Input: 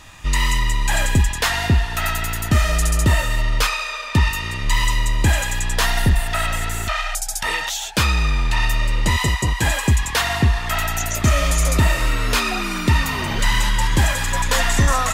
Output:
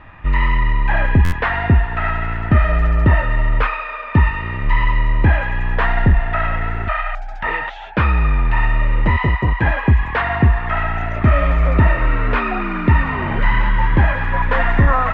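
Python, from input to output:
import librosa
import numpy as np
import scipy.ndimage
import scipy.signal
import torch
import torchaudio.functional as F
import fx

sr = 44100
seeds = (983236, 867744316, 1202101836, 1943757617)

y = scipy.signal.sosfilt(scipy.signal.butter(4, 2100.0, 'lowpass', fs=sr, output='sos'), x)
y = fx.buffer_glitch(y, sr, at_s=(1.24,), block=512, repeats=6)
y = y * 10.0 ** (3.5 / 20.0)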